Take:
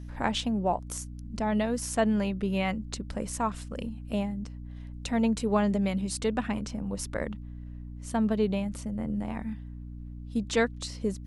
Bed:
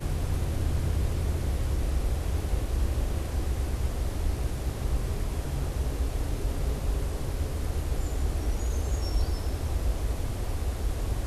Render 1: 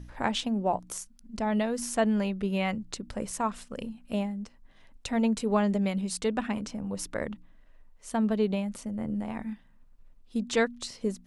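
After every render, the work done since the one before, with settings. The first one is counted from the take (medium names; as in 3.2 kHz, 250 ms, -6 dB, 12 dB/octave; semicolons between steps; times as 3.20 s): de-hum 60 Hz, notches 5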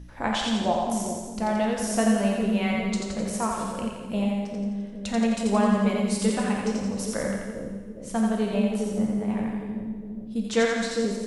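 two-band feedback delay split 510 Hz, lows 407 ms, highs 86 ms, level -3 dB; plate-style reverb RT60 1.3 s, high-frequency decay 0.95×, DRR 1.5 dB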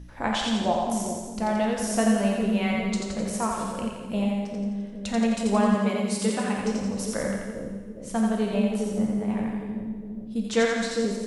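5.75–6.59 s: high-pass 160 Hz 6 dB/octave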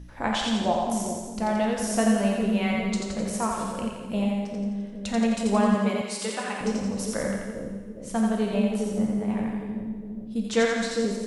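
6.01–6.61 s: frequency weighting A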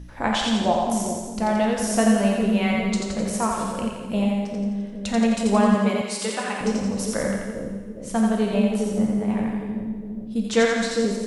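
trim +3.5 dB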